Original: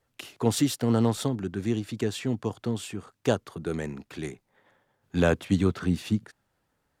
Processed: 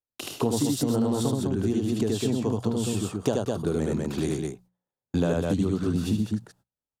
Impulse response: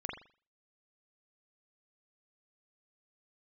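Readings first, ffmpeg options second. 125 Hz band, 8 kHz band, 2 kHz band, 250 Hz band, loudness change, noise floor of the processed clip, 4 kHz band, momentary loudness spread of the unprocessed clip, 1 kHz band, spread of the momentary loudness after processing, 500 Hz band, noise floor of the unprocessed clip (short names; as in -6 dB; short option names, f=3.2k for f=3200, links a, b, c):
+1.0 dB, +2.5 dB, -5.0 dB, +2.5 dB, +1.5 dB, under -85 dBFS, +0.5 dB, 13 LU, 0.0 dB, 5 LU, +2.0 dB, -76 dBFS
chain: -af "equalizer=f=2k:w=1.2:g=-11,agate=range=-35dB:threshold=-54dB:ratio=16:detection=peak,bandreject=f=60:t=h:w=6,bandreject=f=120:t=h:w=6,bandreject=f=180:t=h:w=6,aecho=1:1:75.8|204.1:0.891|0.562,acompressor=threshold=-31dB:ratio=6,volume=9dB"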